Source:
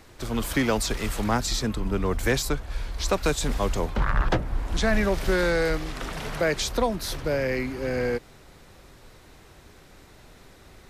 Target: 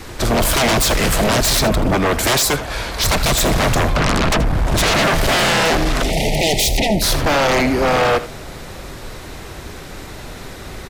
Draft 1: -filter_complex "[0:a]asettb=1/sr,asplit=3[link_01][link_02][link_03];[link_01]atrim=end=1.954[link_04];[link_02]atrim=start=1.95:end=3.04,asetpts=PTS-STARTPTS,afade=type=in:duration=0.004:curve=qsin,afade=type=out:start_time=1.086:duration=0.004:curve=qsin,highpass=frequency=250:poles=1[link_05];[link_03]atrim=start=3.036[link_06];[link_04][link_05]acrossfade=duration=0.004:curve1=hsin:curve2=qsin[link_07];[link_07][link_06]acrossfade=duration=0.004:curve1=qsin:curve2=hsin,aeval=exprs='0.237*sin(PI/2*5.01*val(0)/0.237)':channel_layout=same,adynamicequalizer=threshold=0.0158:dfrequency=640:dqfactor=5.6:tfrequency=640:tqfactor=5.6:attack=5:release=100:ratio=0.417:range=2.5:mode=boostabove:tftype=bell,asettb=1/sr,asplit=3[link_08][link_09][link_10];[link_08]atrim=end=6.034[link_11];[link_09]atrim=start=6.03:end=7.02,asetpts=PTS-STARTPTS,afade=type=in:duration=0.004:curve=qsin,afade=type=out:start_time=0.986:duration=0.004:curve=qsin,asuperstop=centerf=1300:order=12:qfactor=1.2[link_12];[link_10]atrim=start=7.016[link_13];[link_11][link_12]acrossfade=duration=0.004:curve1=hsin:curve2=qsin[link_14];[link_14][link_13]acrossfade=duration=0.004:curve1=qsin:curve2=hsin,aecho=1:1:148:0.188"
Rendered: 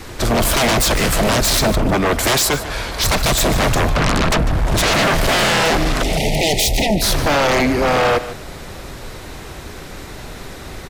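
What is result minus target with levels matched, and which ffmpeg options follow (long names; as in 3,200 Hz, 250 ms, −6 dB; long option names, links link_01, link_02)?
echo 68 ms late
-filter_complex "[0:a]asettb=1/sr,asplit=3[link_01][link_02][link_03];[link_01]atrim=end=1.954[link_04];[link_02]atrim=start=1.95:end=3.04,asetpts=PTS-STARTPTS,afade=type=in:duration=0.004:curve=qsin,afade=type=out:start_time=1.086:duration=0.004:curve=qsin,highpass=frequency=250:poles=1[link_05];[link_03]atrim=start=3.036[link_06];[link_04][link_05]acrossfade=duration=0.004:curve1=hsin:curve2=qsin[link_07];[link_07][link_06]acrossfade=duration=0.004:curve1=qsin:curve2=hsin,aeval=exprs='0.237*sin(PI/2*5.01*val(0)/0.237)':channel_layout=same,adynamicequalizer=threshold=0.0158:dfrequency=640:dqfactor=5.6:tfrequency=640:tqfactor=5.6:attack=5:release=100:ratio=0.417:range=2.5:mode=boostabove:tftype=bell,asettb=1/sr,asplit=3[link_08][link_09][link_10];[link_08]atrim=end=6.034[link_11];[link_09]atrim=start=6.03:end=7.02,asetpts=PTS-STARTPTS,afade=type=in:duration=0.004:curve=qsin,afade=type=out:start_time=0.986:duration=0.004:curve=qsin,asuperstop=centerf=1300:order=12:qfactor=1.2[link_12];[link_10]atrim=start=7.016[link_13];[link_11][link_12]acrossfade=duration=0.004:curve1=hsin:curve2=qsin[link_14];[link_14][link_13]acrossfade=duration=0.004:curve1=qsin:curve2=hsin,aecho=1:1:80:0.188"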